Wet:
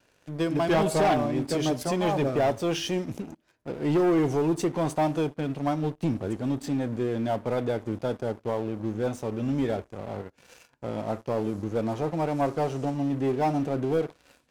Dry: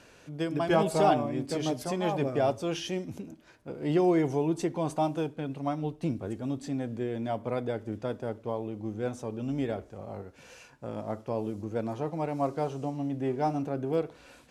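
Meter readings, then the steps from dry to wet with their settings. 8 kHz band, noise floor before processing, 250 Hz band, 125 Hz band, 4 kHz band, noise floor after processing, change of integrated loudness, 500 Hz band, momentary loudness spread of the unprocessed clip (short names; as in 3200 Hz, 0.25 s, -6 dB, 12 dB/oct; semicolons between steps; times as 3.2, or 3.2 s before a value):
+5.0 dB, -56 dBFS, +4.0 dB, +4.0 dB, +4.5 dB, -66 dBFS, +3.5 dB, +3.0 dB, 13 LU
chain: sample leveller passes 3; vibrato 0.92 Hz 20 cents; gain -6 dB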